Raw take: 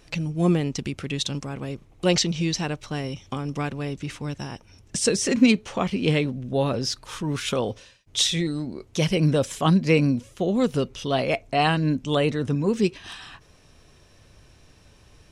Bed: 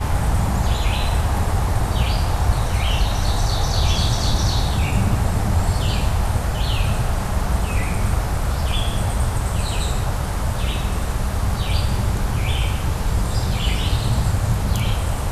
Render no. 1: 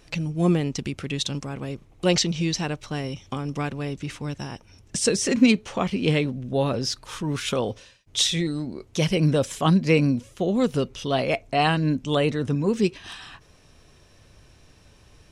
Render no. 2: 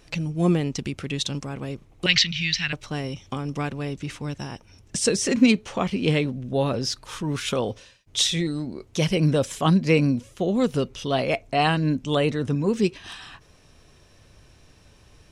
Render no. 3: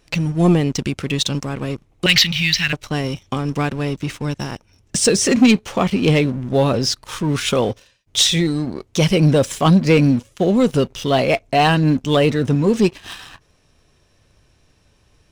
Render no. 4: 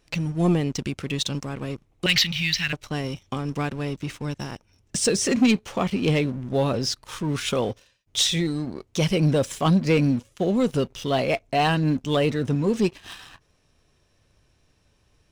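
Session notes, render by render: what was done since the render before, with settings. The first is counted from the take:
nothing audible
2.06–2.73 EQ curve 130 Hz 0 dB, 400 Hz -23 dB, 970 Hz -12 dB, 1900 Hz +11 dB, 4200 Hz +7 dB, 10000 Hz -15 dB
sample leveller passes 2
gain -6.5 dB

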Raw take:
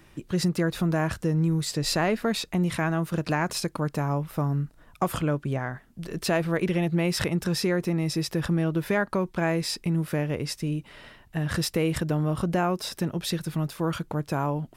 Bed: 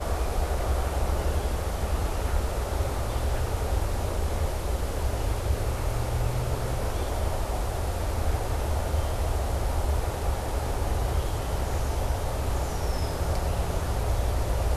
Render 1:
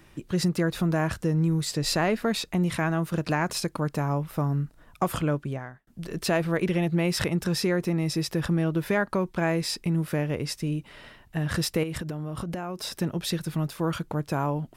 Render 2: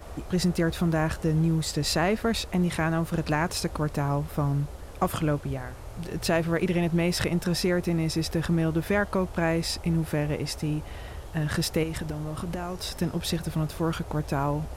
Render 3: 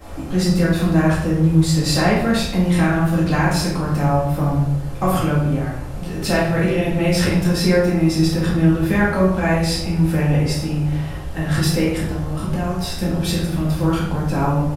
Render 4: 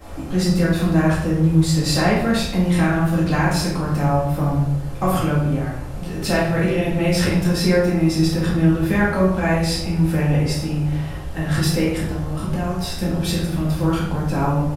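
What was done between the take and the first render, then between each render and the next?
5.34–5.87 fade out; 11.83–12.9 compressor 10:1, threshold -28 dBFS
add bed -13 dB
doubler 34 ms -10.5 dB; shoebox room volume 210 m³, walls mixed, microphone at 2.1 m
gain -1 dB

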